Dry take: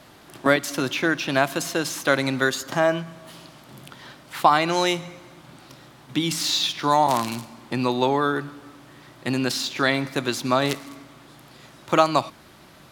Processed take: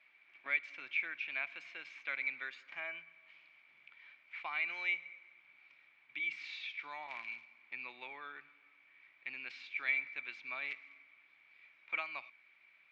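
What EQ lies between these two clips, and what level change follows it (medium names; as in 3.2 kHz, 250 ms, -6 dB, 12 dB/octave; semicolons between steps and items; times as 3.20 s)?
band-pass filter 2.3 kHz, Q 19; distance through air 160 m; +4.5 dB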